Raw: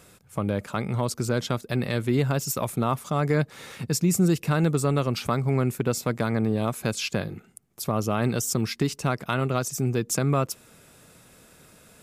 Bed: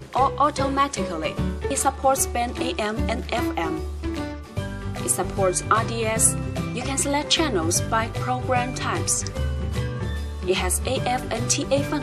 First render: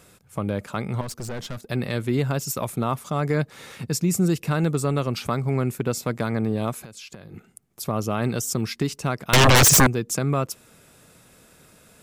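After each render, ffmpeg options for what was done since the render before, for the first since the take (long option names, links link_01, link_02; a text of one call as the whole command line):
ffmpeg -i in.wav -filter_complex "[0:a]asettb=1/sr,asplit=3[link_01][link_02][link_03];[link_01]atrim=end=1.014[link_04];[link_02]atrim=start=1.01:end=1.7,asetpts=PTS-STARTPTS,afade=type=in:duration=0.004:curve=qsin,afade=type=out:start_time=0.686:duration=0.004:curve=qsin,aeval=exprs='(tanh(25.1*val(0)+0.4)-tanh(0.4))/25.1':channel_layout=same[link_05];[link_03]atrim=start=1.696[link_06];[link_04][link_05]acrossfade=duration=0.004:curve1=hsin:curve2=qsin[link_07];[link_07][link_06]acrossfade=duration=0.004:curve1=qsin:curve2=hsin,asettb=1/sr,asplit=3[link_08][link_09][link_10];[link_08]atrim=end=6.794[link_11];[link_09]atrim=start=6.79:end=7.34,asetpts=PTS-STARTPTS,afade=type=in:duration=0.004:curve=qsin,afade=type=out:start_time=0.546:duration=0.004:curve=qsin,acompressor=threshold=-37dB:ratio=12:attack=3.2:release=140:knee=1:detection=peak[link_12];[link_10]atrim=start=7.336[link_13];[link_11][link_12]acrossfade=duration=0.004:curve1=hsin:curve2=qsin[link_14];[link_14][link_13]acrossfade=duration=0.004:curve1=qsin:curve2=hsin,asettb=1/sr,asplit=3[link_15][link_16][link_17];[link_15]atrim=end=9.334[link_18];[link_16]atrim=start=9.33:end=9.87,asetpts=PTS-STARTPTS,afade=type=in:duration=0.004:curve=qsin,afade=type=out:start_time=0.536:duration=0.004:curve=qsin,aeval=exprs='0.299*sin(PI/2*10*val(0)/0.299)':channel_layout=same[link_19];[link_17]atrim=start=9.866[link_20];[link_18][link_19]acrossfade=duration=0.004:curve1=hsin:curve2=qsin[link_21];[link_21][link_20]acrossfade=duration=0.004:curve1=qsin:curve2=hsin" out.wav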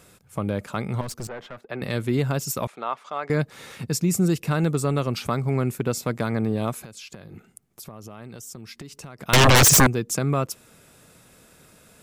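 ffmpeg -i in.wav -filter_complex "[0:a]asettb=1/sr,asplit=3[link_01][link_02][link_03];[link_01]atrim=end=1.274[link_04];[link_02]atrim=start=1.27:end=1.82,asetpts=PTS-STARTPTS,afade=type=in:duration=0.004:curve=qsin,afade=type=out:start_time=0.546:duration=0.004:curve=qsin,acrossover=split=340 2800:gain=0.2 1 0.1[link_05][link_06][link_07];[link_05][link_06][link_07]amix=inputs=3:normalize=0[link_08];[link_03]atrim=start=1.816[link_09];[link_04][link_08]acrossfade=duration=0.004:curve1=hsin:curve2=qsin[link_10];[link_10][link_09]acrossfade=duration=0.004:curve1=qsin:curve2=hsin,asettb=1/sr,asplit=3[link_11][link_12][link_13];[link_11]atrim=end=2.674[link_14];[link_12]atrim=start=2.67:end=3.3,asetpts=PTS-STARTPTS,afade=type=in:duration=0.004:curve=qsin,afade=type=out:start_time=0.626:duration=0.004:curve=qsin,highpass=650,lowpass=3300[link_15];[link_13]atrim=start=3.296[link_16];[link_14][link_15]acrossfade=duration=0.004:curve1=hsin:curve2=qsin[link_17];[link_17][link_16]acrossfade=duration=0.004:curve1=qsin:curve2=hsin,asettb=1/sr,asplit=3[link_18][link_19][link_20];[link_18]atrim=end=7.334[link_21];[link_19]atrim=start=7.33:end=9.19,asetpts=PTS-STARTPTS,afade=type=in:duration=0.004:curve=qsin,afade=type=out:start_time=1.856:duration=0.004:curve=qsin,acompressor=threshold=-37dB:ratio=6:attack=3.2:release=140:knee=1:detection=peak[link_22];[link_20]atrim=start=9.186[link_23];[link_21][link_22]acrossfade=duration=0.004:curve1=hsin:curve2=qsin[link_24];[link_24][link_23]acrossfade=duration=0.004:curve1=qsin:curve2=hsin" out.wav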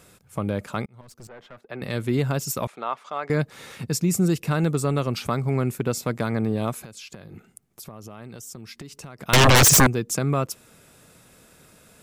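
ffmpeg -i in.wav -filter_complex "[0:a]asplit=2[link_01][link_02];[link_01]atrim=end=0.86,asetpts=PTS-STARTPTS,afade=type=out:start_time=0.856:duration=0.004:curve=hsin[link_03];[link_02]atrim=start=0.86,asetpts=PTS-STARTPTS,afade=type=in:duration=1.25[link_04];[link_03][link_04]concat=n=2:v=0:a=1" out.wav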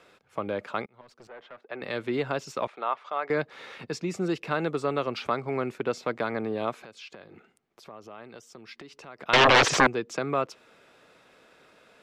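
ffmpeg -i in.wav -filter_complex "[0:a]acrossover=split=9300[link_01][link_02];[link_02]acompressor=threshold=-44dB:ratio=4:attack=1:release=60[link_03];[link_01][link_03]amix=inputs=2:normalize=0,acrossover=split=300 4500:gain=0.141 1 0.0708[link_04][link_05][link_06];[link_04][link_05][link_06]amix=inputs=3:normalize=0" out.wav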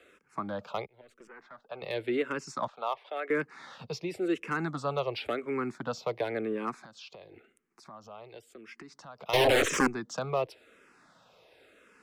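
ffmpeg -i in.wav -filter_complex "[0:a]acrossover=split=240|770[link_01][link_02][link_03];[link_03]asoftclip=type=hard:threshold=-23.5dB[link_04];[link_01][link_02][link_04]amix=inputs=3:normalize=0,asplit=2[link_05][link_06];[link_06]afreqshift=-0.94[link_07];[link_05][link_07]amix=inputs=2:normalize=1" out.wav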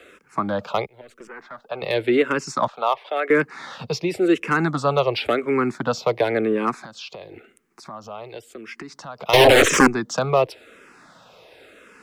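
ffmpeg -i in.wav -af "volume=11.5dB,alimiter=limit=-2dB:level=0:latency=1" out.wav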